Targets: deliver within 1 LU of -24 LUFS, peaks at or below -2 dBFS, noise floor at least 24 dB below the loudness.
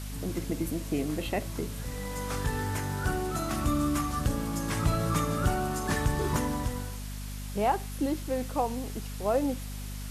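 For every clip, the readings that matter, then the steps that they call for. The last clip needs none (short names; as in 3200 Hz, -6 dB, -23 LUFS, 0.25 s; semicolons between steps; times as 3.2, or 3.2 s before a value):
hum 50 Hz; harmonics up to 250 Hz; hum level -35 dBFS; noise floor -38 dBFS; noise floor target -55 dBFS; loudness -31.0 LUFS; peak -14.5 dBFS; loudness target -24.0 LUFS
-> de-hum 50 Hz, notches 5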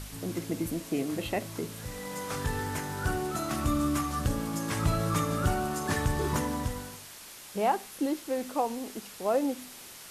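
hum none; noise floor -47 dBFS; noise floor target -56 dBFS
-> denoiser 9 dB, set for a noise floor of -47 dBFS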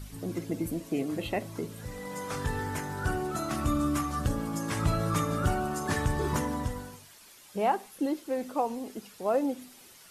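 noise floor -54 dBFS; noise floor target -56 dBFS
-> denoiser 6 dB, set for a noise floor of -54 dBFS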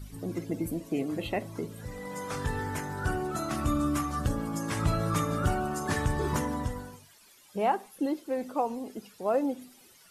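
noise floor -58 dBFS; loudness -31.5 LUFS; peak -14.5 dBFS; loudness target -24.0 LUFS
-> gain +7.5 dB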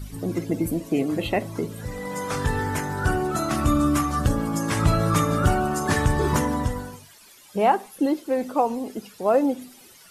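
loudness -24.0 LUFS; peak -7.0 dBFS; noise floor -50 dBFS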